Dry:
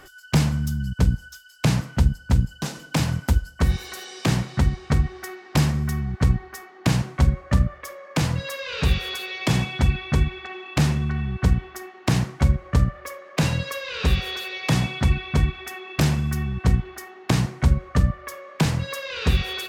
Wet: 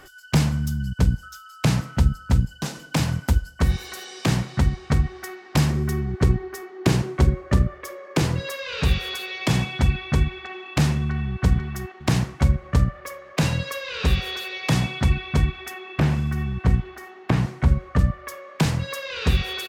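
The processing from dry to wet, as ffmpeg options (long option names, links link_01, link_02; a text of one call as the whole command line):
ffmpeg -i in.wav -filter_complex "[0:a]asettb=1/sr,asplit=3[link_01][link_02][link_03];[link_01]atrim=end=1.234[link_04];[link_02]atrim=start=1.23:end=2.38,asetpts=PTS-STARTPTS,afade=type=in:duration=0.004:curve=qsin,afade=type=out:start_time=1.146:duration=0.004:curve=qsin,aeval=exprs='val(0)+0.00708*sin(2*PI*1300*n/s)':channel_layout=same[link_05];[link_03]atrim=start=2.376[link_06];[link_04][link_05]acrossfade=duration=0.004:curve1=hsin:curve2=qsin[link_07];[link_07][link_06]acrossfade=duration=0.004:curve1=qsin:curve2=hsin,asettb=1/sr,asplit=3[link_08][link_09][link_10];[link_08]atrim=end=5.704[link_11];[link_09]atrim=start=5.7:end=8.52,asetpts=PTS-STARTPTS,afade=type=in:duration=0.004:curve=qsin,afade=type=out:start_time=2.816:duration=0.004:curve=qsin,equalizer=frequency=380:width_type=o:width=0.43:gain=12[link_12];[link_10]atrim=start=8.516[link_13];[link_11][link_12]acrossfade=duration=0.004:curve1=hsin:curve2=qsin[link_14];[link_14][link_13]acrossfade=duration=0.004:curve1=qsin:curve2=hsin,asplit=2[link_15][link_16];[link_16]afade=type=in:start_time=11.02:duration=0.01,afade=type=out:start_time=11.42:duration=0.01,aecho=0:1:490|980|1470|1960:0.562341|0.168702|0.0506107|0.0151832[link_17];[link_15][link_17]amix=inputs=2:normalize=0,asettb=1/sr,asplit=3[link_18][link_19][link_20];[link_18]atrim=end=15.734[link_21];[link_19]atrim=start=15.73:end=17.99,asetpts=PTS-STARTPTS,afade=type=in:duration=0.004:curve=qsin,afade=type=out:start_time=2.256:duration=0.004:curve=qsin,acrossover=split=2900[link_22][link_23];[link_23]acompressor=threshold=-45dB:ratio=4:attack=1:release=60[link_24];[link_22][link_24]amix=inputs=2:normalize=0[link_25];[link_20]atrim=start=17.986[link_26];[link_21][link_25]acrossfade=duration=0.004:curve1=hsin:curve2=qsin[link_27];[link_27][link_26]acrossfade=duration=0.004:curve1=qsin:curve2=hsin" out.wav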